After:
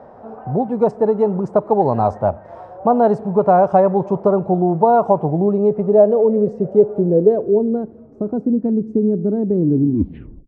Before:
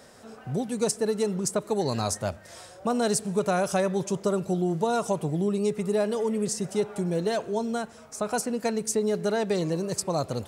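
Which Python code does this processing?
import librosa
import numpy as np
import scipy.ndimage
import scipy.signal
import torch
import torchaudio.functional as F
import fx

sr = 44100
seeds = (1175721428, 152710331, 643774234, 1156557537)

y = fx.tape_stop_end(x, sr, length_s=0.85)
y = fx.filter_sweep_lowpass(y, sr, from_hz=840.0, to_hz=290.0, start_s=5.14, end_s=8.61, q=2.6)
y = F.gain(torch.from_numpy(y), 8.0).numpy()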